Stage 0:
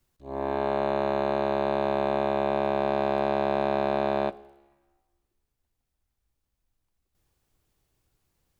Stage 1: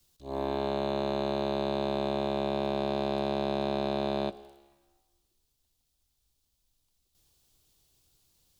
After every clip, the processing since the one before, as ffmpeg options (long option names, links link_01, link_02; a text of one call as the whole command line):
ffmpeg -i in.wav -filter_complex "[0:a]highshelf=frequency=2700:width_type=q:width=1.5:gain=9,acrossover=split=390[link_01][link_02];[link_02]acompressor=threshold=-30dB:ratio=5[link_03];[link_01][link_03]amix=inputs=2:normalize=0" out.wav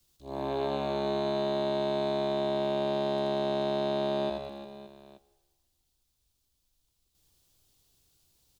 ffmpeg -i in.wav -af "aecho=1:1:80|192|348.8|568.3|875.6:0.631|0.398|0.251|0.158|0.1,volume=-2dB" out.wav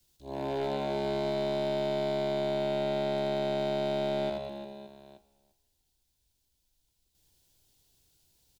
ffmpeg -i in.wav -filter_complex "[0:a]aeval=exprs='clip(val(0),-1,0.0447)':channel_layout=same,asuperstop=centerf=1200:order=4:qfactor=5.7,asplit=2[link_01][link_02];[link_02]adelay=344,volume=-19dB,highshelf=frequency=4000:gain=-7.74[link_03];[link_01][link_03]amix=inputs=2:normalize=0" out.wav